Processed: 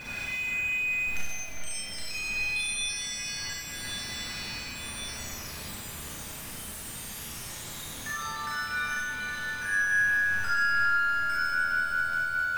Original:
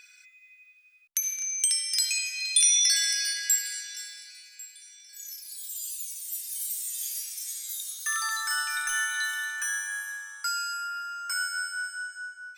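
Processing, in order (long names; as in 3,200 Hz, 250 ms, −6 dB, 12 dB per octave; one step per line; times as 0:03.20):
converter with a step at zero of −29 dBFS
downward compressor, threshold −28 dBFS, peak gain reduction 11 dB
bass and treble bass +13 dB, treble −15 dB
on a send: echo with a time of its own for lows and highs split 2,700 Hz, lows 412 ms, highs 95 ms, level −4.5 dB
on the sum: four-comb reverb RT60 0.83 s, combs from 27 ms, DRR −5 dB
level −4.5 dB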